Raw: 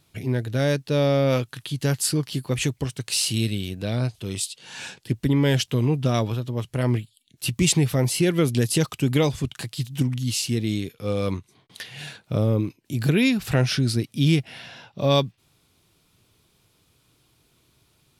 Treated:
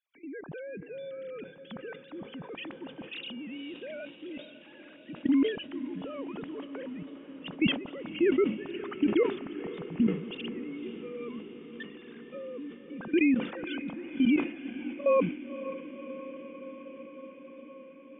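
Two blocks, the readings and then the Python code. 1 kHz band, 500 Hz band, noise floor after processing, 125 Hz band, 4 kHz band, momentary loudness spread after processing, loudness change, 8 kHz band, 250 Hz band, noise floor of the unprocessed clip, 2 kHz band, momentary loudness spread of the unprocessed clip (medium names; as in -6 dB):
-9.0 dB, -6.0 dB, -52 dBFS, -23.5 dB, -13.5 dB, 19 LU, -8.5 dB, under -40 dB, -5.0 dB, -65 dBFS, -7.0 dB, 11 LU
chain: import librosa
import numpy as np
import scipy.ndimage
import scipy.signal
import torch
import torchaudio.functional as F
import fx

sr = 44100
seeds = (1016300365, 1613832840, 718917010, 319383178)

y = fx.sine_speech(x, sr)
y = fx.level_steps(y, sr, step_db=18)
y = fx.echo_diffused(y, sr, ms=518, feedback_pct=76, wet_db=-13.5)
y = fx.sustainer(y, sr, db_per_s=110.0)
y = F.gain(torch.from_numpy(y), -4.0).numpy()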